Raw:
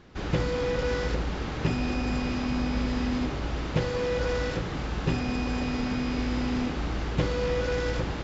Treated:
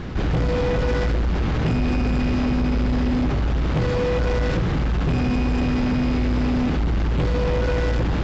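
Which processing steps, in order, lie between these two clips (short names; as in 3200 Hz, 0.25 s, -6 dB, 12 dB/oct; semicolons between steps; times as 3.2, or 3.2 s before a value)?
tone controls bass +7 dB, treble -5 dB; soft clip -23.5 dBFS, distortion -10 dB; fast leveller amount 50%; gain +6 dB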